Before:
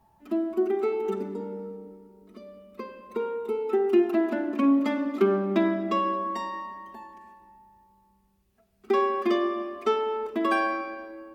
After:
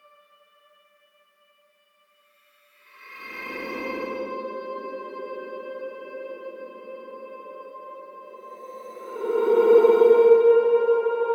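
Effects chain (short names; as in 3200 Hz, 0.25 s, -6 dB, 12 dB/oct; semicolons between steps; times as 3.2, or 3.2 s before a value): transient shaper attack +7 dB, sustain +3 dB; LFO high-pass saw up 0.71 Hz 320–2000 Hz; Paulstretch 17×, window 0.10 s, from 2.59; gain +2.5 dB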